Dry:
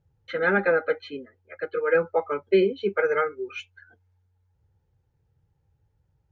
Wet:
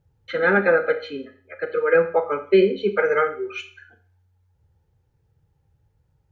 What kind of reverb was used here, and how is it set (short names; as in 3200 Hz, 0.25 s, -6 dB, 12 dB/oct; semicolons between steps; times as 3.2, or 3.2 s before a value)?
Schroeder reverb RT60 0.45 s, combs from 26 ms, DRR 8.5 dB; gain +3.5 dB